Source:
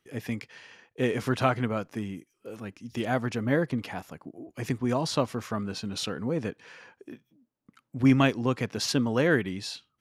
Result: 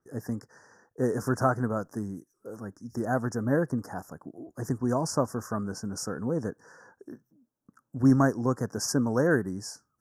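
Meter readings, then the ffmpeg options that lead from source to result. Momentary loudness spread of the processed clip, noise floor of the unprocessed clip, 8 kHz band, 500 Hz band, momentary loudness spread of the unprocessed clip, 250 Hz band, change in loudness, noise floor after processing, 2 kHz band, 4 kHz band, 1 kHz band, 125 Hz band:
18 LU, -77 dBFS, +3.0 dB, 0.0 dB, 20 LU, 0.0 dB, -0.5 dB, -79 dBFS, -3.5 dB, -8.0 dB, 0.0 dB, 0.0 dB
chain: -af "asuperstop=centerf=3000:order=12:qfactor=0.83,adynamicequalizer=threshold=0.00501:dfrequency=4500:dqfactor=0.7:tfrequency=4500:tqfactor=0.7:attack=5:release=100:ratio=0.375:range=2:mode=boostabove:tftype=highshelf"

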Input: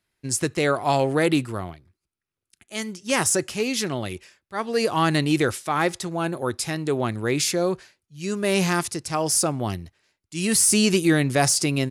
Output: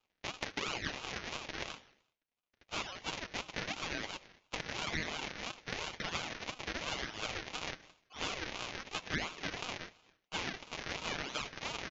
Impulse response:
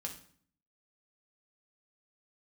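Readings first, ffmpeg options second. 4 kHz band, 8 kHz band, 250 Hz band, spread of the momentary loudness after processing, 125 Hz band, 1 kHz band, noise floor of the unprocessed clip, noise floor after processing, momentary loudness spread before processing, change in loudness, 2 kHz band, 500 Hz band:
-10.0 dB, -23.5 dB, -23.5 dB, 6 LU, -22.0 dB, -15.5 dB, -85 dBFS, -85 dBFS, 14 LU, -17.0 dB, -10.5 dB, -22.0 dB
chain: -af "alimiter=limit=-18dB:level=0:latency=1:release=15,aresample=11025,acrusher=samples=26:mix=1:aa=0.000001:lfo=1:lforange=41.6:lforate=0.95,aresample=44100,highpass=810,acompressor=threshold=-43dB:ratio=6,lowpass=f=1.5k:p=1,aemphasis=mode=production:type=75kf,aecho=1:1:6.4:0.47,aecho=1:1:76|152|228|304|380:0.106|0.0604|0.0344|0.0196|0.0112,aeval=exprs='val(0)*sin(2*PI*1400*n/s+1400*0.35/2.9*sin(2*PI*2.9*n/s))':c=same,volume=11.5dB"

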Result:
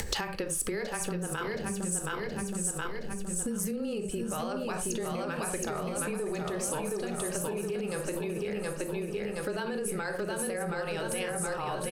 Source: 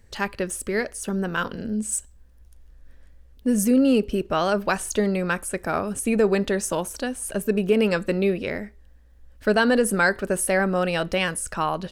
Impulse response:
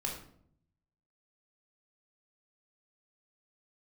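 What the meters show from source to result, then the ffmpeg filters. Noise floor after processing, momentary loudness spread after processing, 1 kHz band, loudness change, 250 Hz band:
-37 dBFS, 3 LU, -9.0 dB, -9.5 dB, -11.5 dB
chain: -filter_complex "[0:a]aecho=1:1:721|1442|2163|2884|3605|4326|5047:0.631|0.328|0.171|0.0887|0.0461|0.024|0.0125,afreqshift=-18,asplit=2[a][b];[b]equalizer=f=770:w=0.59:g=9.5[c];[1:a]atrim=start_sample=2205,atrim=end_sample=4410,lowshelf=f=410:g=6[d];[c][d]afir=irnorm=-1:irlink=0,volume=-8dB[e];[a][e]amix=inputs=2:normalize=0,acompressor=mode=upward:threshold=-18dB:ratio=2.5,alimiter=limit=-10.5dB:level=0:latency=1:release=43,acompressor=threshold=-29dB:ratio=6,highshelf=f=2.7k:g=7.5,volume=-3dB"

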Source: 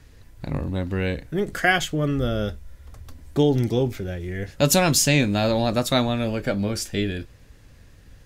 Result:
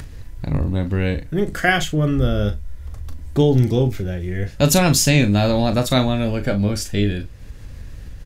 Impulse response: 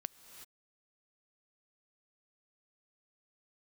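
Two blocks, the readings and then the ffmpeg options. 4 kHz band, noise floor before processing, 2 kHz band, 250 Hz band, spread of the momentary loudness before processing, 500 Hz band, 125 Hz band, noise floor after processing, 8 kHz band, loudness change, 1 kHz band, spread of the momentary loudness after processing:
+2.0 dB, -50 dBFS, +2.0 dB, +4.5 dB, 13 LU, +2.5 dB, +6.5 dB, -36 dBFS, +2.0 dB, +4.0 dB, +2.0 dB, 20 LU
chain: -filter_complex "[0:a]lowshelf=f=130:g=9.5,acompressor=mode=upward:threshold=-28dB:ratio=2.5,asplit=2[a][b];[b]adelay=39,volume=-10.5dB[c];[a][c]amix=inputs=2:normalize=0,volume=1.5dB"

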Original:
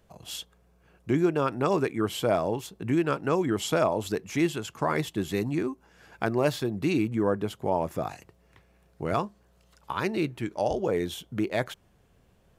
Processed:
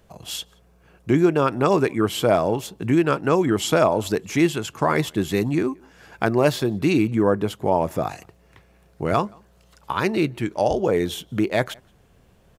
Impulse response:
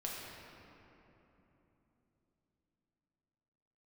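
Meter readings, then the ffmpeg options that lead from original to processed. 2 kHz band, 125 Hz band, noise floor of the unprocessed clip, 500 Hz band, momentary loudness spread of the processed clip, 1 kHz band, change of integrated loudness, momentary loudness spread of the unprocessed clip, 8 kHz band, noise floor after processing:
+6.5 dB, +6.5 dB, -63 dBFS, +6.5 dB, 11 LU, +6.5 dB, +6.5 dB, 11 LU, +6.5 dB, -57 dBFS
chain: -filter_complex "[0:a]asplit=2[a][b];[b]adelay=174.9,volume=-29dB,highshelf=f=4k:g=-3.94[c];[a][c]amix=inputs=2:normalize=0,volume=6.5dB"

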